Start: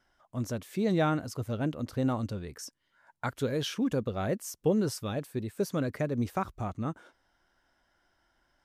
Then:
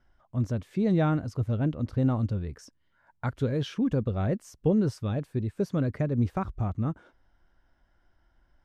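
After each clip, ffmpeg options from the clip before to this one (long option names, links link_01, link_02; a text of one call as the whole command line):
ffmpeg -i in.wav -af "aemphasis=mode=reproduction:type=bsi,volume=-1.5dB" out.wav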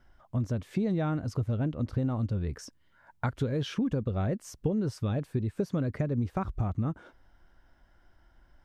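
ffmpeg -i in.wav -af "acompressor=threshold=-31dB:ratio=6,volume=5dB" out.wav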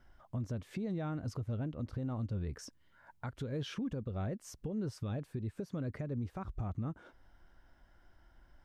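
ffmpeg -i in.wav -af "alimiter=level_in=4dB:limit=-24dB:level=0:latency=1:release=346,volume=-4dB,volume=-1.5dB" out.wav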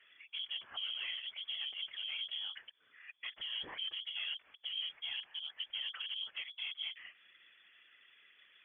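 ffmpeg -i in.wav -filter_complex "[0:a]asplit=2[link_01][link_02];[link_02]highpass=frequency=720:poles=1,volume=19dB,asoftclip=type=tanh:threshold=-29dB[link_03];[link_01][link_03]amix=inputs=2:normalize=0,lowpass=frequency=2200:poles=1,volume=-6dB,lowpass=frequency=2900:width_type=q:width=0.5098,lowpass=frequency=2900:width_type=q:width=0.6013,lowpass=frequency=2900:width_type=q:width=0.9,lowpass=frequency=2900:width_type=q:width=2.563,afreqshift=-3400,afftfilt=real='hypot(re,im)*cos(2*PI*random(0))':imag='hypot(re,im)*sin(2*PI*random(1))':win_size=512:overlap=0.75,volume=1.5dB" out.wav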